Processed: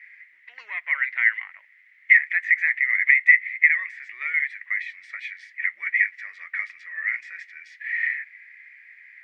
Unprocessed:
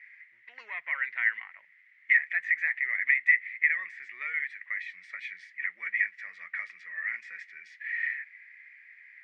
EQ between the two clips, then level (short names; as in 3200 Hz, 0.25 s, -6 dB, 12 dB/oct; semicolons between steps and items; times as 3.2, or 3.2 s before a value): HPF 1000 Hz 6 dB/oct; dynamic EQ 2100 Hz, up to +5 dB, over -40 dBFS, Q 6.6; +5.5 dB